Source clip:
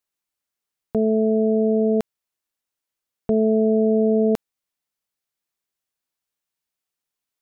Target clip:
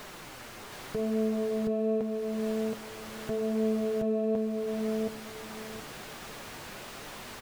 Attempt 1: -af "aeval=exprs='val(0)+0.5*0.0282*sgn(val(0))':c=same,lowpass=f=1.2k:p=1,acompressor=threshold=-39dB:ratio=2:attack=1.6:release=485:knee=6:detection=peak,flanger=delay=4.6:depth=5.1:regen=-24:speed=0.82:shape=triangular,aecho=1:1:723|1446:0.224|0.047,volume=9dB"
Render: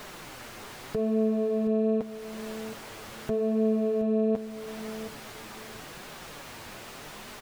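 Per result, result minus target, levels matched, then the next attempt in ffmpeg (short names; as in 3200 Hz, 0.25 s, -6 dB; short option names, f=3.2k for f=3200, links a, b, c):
echo-to-direct -10.5 dB; compressor: peak gain reduction -3 dB
-af "aeval=exprs='val(0)+0.5*0.0282*sgn(val(0))':c=same,lowpass=f=1.2k:p=1,acompressor=threshold=-39dB:ratio=2:attack=1.6:release=485:knee=6:detection=peak,flanger=delay=4.6:depth=5.1:regen=-24:speed=0.82:shape=triangular,aecho=1:1:723|1446|2169:0.75|0.157|0.0331,volume=9dB"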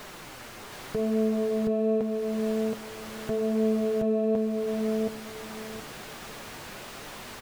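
compressor: peak gain reduction -3 dB
-af "aeval=exprs='val(0)+0.5*0.0282*sgn(val(0))':c=same,lowpass=f=1.2k:p=1,acompressor=threshold=-45.5dB:ratio=2:attack=1.6:release=485:knee=6:detection=peak,flanger=delay=4.6:depth=5.1:regen=-24:speed=0.82:shape=triangular,aecho=1:1:723|1446|2169:0.75|0.157|0.0331,volume=9dB"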